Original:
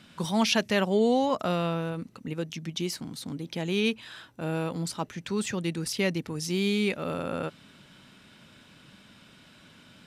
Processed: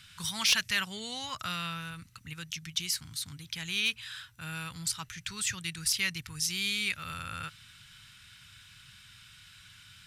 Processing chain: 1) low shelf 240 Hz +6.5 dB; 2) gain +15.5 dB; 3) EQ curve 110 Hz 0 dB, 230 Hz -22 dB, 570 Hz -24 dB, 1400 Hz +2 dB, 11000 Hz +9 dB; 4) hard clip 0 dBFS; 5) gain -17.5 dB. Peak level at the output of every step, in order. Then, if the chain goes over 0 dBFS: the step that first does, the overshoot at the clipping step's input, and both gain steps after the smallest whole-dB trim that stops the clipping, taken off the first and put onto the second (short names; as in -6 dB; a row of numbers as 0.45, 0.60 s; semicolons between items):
-11.0, +4.5, +8.5, 0.0, -17.5 dBFS; step 2, 8.5 dB; step 2 +6.5 dB, step 5 -8.5 dB